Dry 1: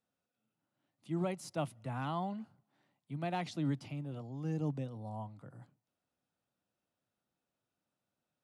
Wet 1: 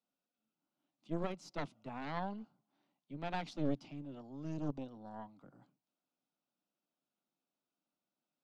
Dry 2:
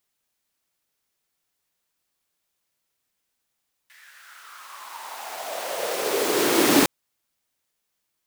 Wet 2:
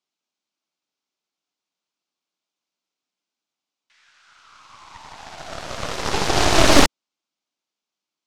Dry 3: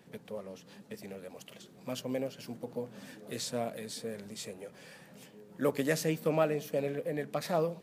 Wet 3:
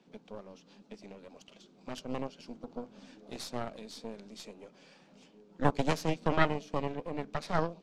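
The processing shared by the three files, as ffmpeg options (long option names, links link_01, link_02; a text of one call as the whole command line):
ffmpeg -i in.wav -af "highpass=frequency=170:width=0.5412,highpass=frequency=170:width=1.3066,equalizer=frequency=290:width_type=q:width=4:gain=3,equalizer=frequency=490:width_type=q:width=4:gain=-4,equalizer=frequency=1800:width_type=q:width=4:gain=-9,lowpass=frequency=6400:width=0.5412,lowpass=frequency=6400:width=1.3066,aeval=exprs='0.531*(cos(1*acos(clip(val(0)/0.531,-1,1)))-cos(1*PI/2))+0.0841*(cos(3*acos(clip(val(0)/0.531,-1,1)))-cos(3*PI/2))+0.237*(cos(6*acos(clip(val(0)/0.531,-1,1)))-cos(6*PI/2))':channel_layout=same,volume=2dB" out.wav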